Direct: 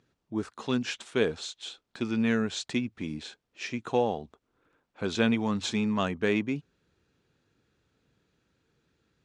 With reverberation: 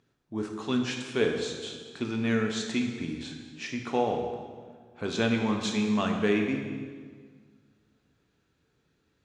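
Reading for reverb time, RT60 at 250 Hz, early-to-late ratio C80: 1.7 s, 2.0 s, 6.0 dB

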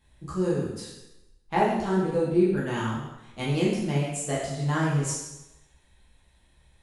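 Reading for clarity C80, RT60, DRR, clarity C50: 4.5 dB, 0.95 s, -7.5 dB, 1.0 dB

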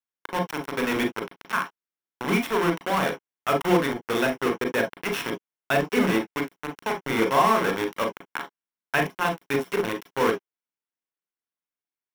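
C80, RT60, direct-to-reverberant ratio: 34.5 dB, no single decay rate, 3.5 dB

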